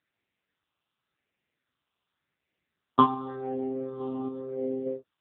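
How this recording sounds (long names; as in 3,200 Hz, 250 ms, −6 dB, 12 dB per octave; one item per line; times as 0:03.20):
a buzz of ramps at a fixed pitch in blocks of 8 samples
sample-and-hold tremolo
phaser sweep stages 6, 0.9 Hz, lowest notch 500–1,100 Hz
AMR narrowband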